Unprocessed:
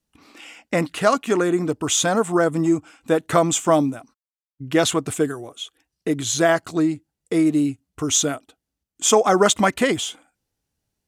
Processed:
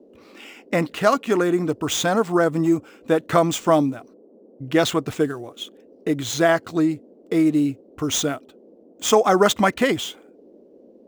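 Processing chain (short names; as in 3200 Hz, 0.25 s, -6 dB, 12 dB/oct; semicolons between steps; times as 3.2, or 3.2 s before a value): median filter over 5 samples; band noise 210–540 Hz -50 dBFS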